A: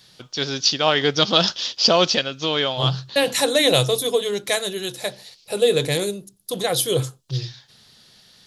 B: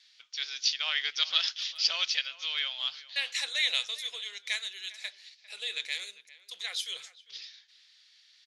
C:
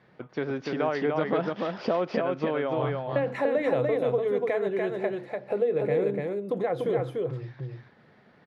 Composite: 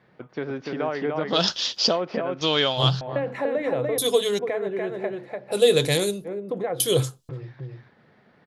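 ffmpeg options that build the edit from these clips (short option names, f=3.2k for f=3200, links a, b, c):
-filter_complex "[0:a]asplit=5[a][b][c][d][e];[2:a]asplit=6[f][g][h][i][j][k];[f]atrim=end=1.51[l];[a]atrim=start=1.27:end=1.99[m];[g]atrim=start=1.75:end=2.412[n];[b]atrim=start=2.408:end=3.012[o];[h]atrim=start=3.008:end=3.982[p];[c]atrim=start=3.978:end=4.392[q];[i]atrim=start=4.388:end=5.55[r];[d]atrim=start=5.51:end=6.28[s];[j]atrim=start=6.24:end=6.802[t];[e]atrim=start=6.798:end=7.292[u];[k]atrim=start=7.288[v];[l][m]acrossfade=d=0.24:c1=tri:c2=tri[w];[w][n]acrossfade=d=0.24:c1=tri:c2=tri[x];[x][o]acrossfade=d=0.004:c1=hsin:c2=hsin[y];[y][p]acrossfade=d=0.004:c1=hsin:c2=hsin[z];[z][q]acrossfade=d=0.004:c1=hsin:c2=hsin[aa];[aa][r]acrossfade=d=0.004:c1=hsin:c2=hsin[ab];[ab][s]acrossfade=d=0.04:c1=tri:c2=tri[ac];[ac][t]acrossfade=d=0.04:c1=tri:c2=tri[ad];[ad][u]acrossfade=d=0.004:c1=hsin:c2=hsin[ae];[ae][v]acrossfade=d=0.004:c1=hsin:c2=hsin"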